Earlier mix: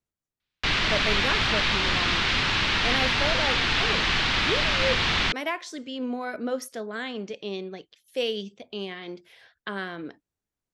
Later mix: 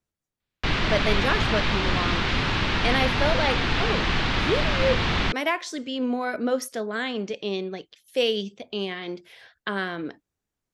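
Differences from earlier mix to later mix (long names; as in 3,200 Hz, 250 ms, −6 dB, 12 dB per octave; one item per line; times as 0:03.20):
speech +4.5 dB
background: add tilt shelving filter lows +5.5 dB, about 1,200 Hz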